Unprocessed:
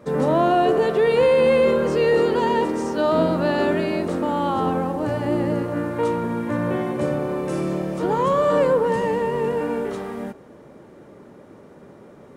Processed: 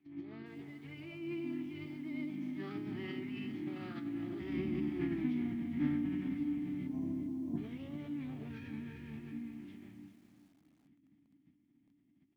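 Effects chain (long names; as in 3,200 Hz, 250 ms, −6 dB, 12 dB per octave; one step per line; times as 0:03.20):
source passing by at 0:05.17, 45 m/s, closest 11 metres
time-frequency box erased 0:06.87–0:07.58, 1,900–5,600 Hz
Bessel low-pass filter 7,100 Hz, order 4
high-shelf EQ 3,400 Hz +5 dB
downward compressor 5 to 1, threshold −37 dBFS, peak gain reduction 16 dB
formant filter i
phase-vocoder pitch shift with formants kept −10 semitones
feedback echo at a low word length 400 ms, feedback 35%, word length 13 bits, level −10.5 dB
level +14.5 dB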